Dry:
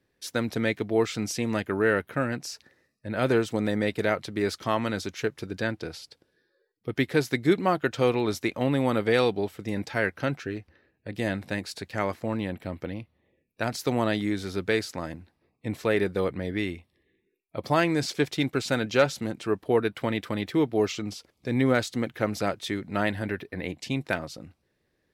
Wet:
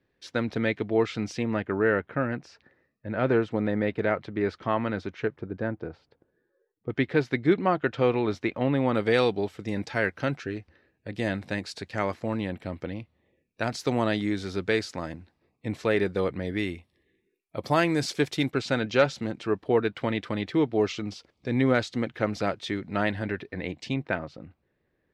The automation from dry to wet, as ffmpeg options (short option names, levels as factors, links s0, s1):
-af "asetnsamples=n=441:p=0,asendcmd='1.43 lowpass f 2200;5.36 lowpass f 1200;6.9 lowpass f 3000;8.95 lowpass f 7300;16.47 lowpass f 12000;18.51 lowpass f 5100;23.94 lowpass f 2400',lowpass=3700"